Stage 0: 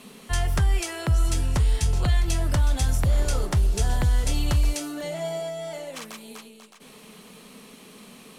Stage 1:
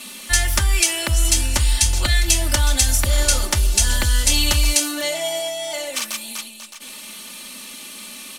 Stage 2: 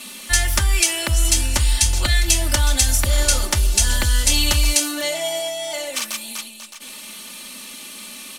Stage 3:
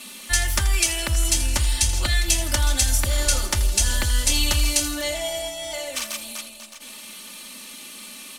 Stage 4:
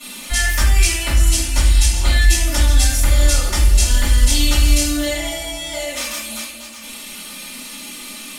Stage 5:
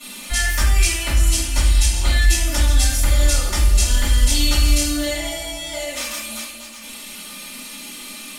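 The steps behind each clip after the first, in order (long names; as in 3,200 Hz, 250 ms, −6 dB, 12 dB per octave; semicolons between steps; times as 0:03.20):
tilt shelving filter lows −8 dB, about 1,500 Hz; comb filter 3.4 ms, depth 89%; level +6.5 dB
no processing that can be heard
echo with a time of its own for lows and highs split 830 Hz, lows 275 ms, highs 82 ms, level −14 dB; level −3.5 dB
in parallel at −1.5 dB: downward compressor, threshold −30 dBFS, peak gain reduction 14.5 dB; on the sum: convolution reverb RT60 0.55 s, pre-delay 3 ms, DRR −12 dB; level −12 dB
tuned comb filter 200 Hz, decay 1.7 s, mix 70%; level +8 dB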